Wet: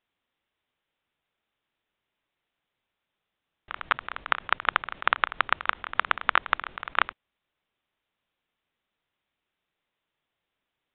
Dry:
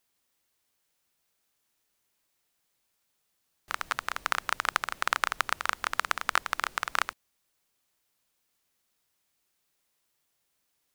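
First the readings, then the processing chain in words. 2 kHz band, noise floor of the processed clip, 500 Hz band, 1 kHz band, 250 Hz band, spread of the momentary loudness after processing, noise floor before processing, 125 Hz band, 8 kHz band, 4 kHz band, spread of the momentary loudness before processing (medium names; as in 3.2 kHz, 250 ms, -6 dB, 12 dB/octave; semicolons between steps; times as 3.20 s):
+3.0 dB, -85 dBFS, +3.0 dB, +3.0 dB, +3.0 dB, 5 LU, -77 dBFS, +3.0 dB, under -35 dB, +1.0 dB, 5 LU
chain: level held to a coarse grid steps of 14 dB; resampled via 8 kHz; trim +7 dB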